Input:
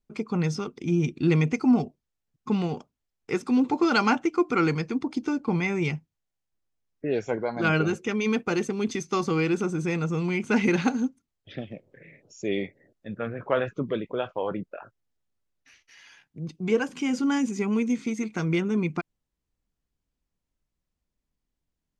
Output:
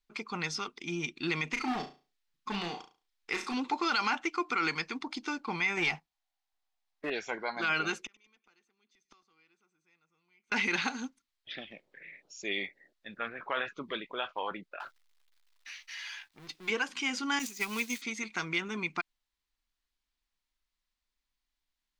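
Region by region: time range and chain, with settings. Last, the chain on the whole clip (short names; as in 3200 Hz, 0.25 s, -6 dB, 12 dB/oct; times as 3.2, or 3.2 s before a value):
1.52–3.54 hard clip -20 dBFS + flutter echo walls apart 6 m, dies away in 0.32 s
5.77–7.1 bell 750 Hz +13 dB 0.6 oct + sample leveller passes 1
7.99–10.52 flipped gate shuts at -25 dBFS, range -39 dB + feedback echo 99 ms, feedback 58%, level -22 dB
14.8–16.7 G.711 law mismatch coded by mu + bell 190 Hz -8 dB 1 oct + doubler 14 ms -13.5 dB
17.39–18.02 switching spikes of -33 dBFS + high shelf 3000 Hz +7.5 dB + expander -23 dBFS
whole clip: graphic EQ 125/250/500/1000/2000/4000 Hz -8/-4/-8/+4/+5/+9 dB; limiter -16.5 dBFS; bell 100 Hz -14 dB 1.4 oct; gain -3 dB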